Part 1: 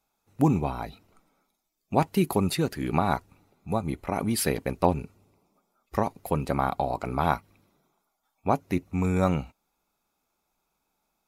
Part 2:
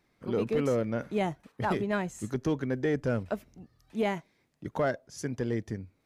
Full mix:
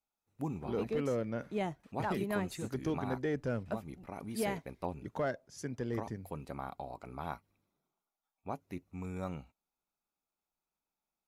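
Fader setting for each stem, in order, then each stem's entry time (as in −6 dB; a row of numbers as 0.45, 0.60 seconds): −16.0, −6.0 decibels; 0.00, 0.40 seconds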